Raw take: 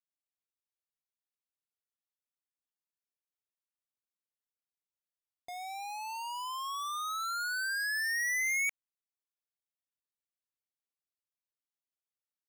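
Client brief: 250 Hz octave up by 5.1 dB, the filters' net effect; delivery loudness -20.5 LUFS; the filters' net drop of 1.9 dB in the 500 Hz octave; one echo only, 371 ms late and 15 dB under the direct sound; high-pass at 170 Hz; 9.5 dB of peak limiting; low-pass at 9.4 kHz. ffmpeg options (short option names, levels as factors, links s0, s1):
-af "highpass=170,lowpass=9400,equalizer=f=250:t=o:g=9,equalizer=f=500:t=o:g=-5.5,alimiter=level_in=4.47:limit=0.0631:level=0:latency=1,volume=0.224,aecho=1:1:371:0.178,volume=8.91"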